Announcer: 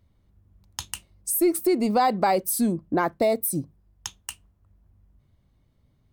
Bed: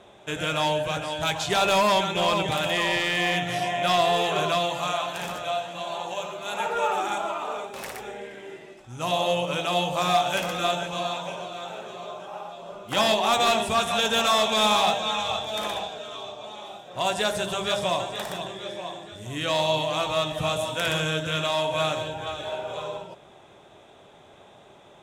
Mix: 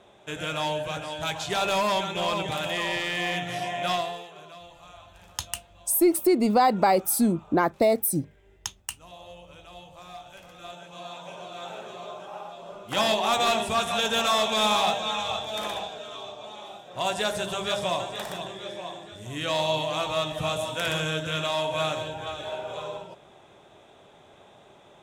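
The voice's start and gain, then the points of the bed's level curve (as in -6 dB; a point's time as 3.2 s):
4.60 s, +1.0 dB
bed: 3.93 s -4 dB
4.31 s -21.5 dB
10.4 s -21.5 dB
11.65 s -2 dB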